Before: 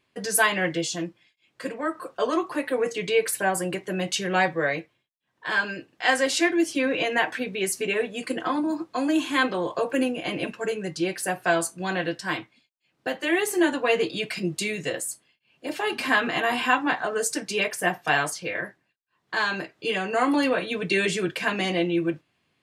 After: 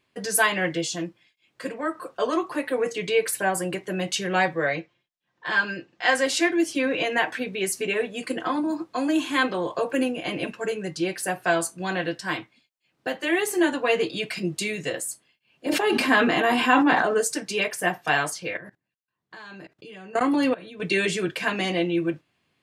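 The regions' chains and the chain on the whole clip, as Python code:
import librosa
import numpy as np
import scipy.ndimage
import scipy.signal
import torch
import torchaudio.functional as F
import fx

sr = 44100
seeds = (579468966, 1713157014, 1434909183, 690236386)

y = fx.chain(x, sr, fx.lowpass(hz=6900.0, slope=24),
    fx.comb(ms=5.7, depth=0.3), at=(4.66, 6.15))
y = fx.chain(y, sr, fx.highpass(hz=220.0, slope=12),
    fx.low_shelf(hz=380.0, db=12.0),
    fx.sustainer(db_per_s=29.0), at=(15.66, 17.21))
y = fx.chain(y, sr, fx.highpass(hz=81.0, slope=6),
    fx.low_shelf(hz=250.0, db=11.5),
    fx.level_steps(step_db=21), at=(18.57, 20.8))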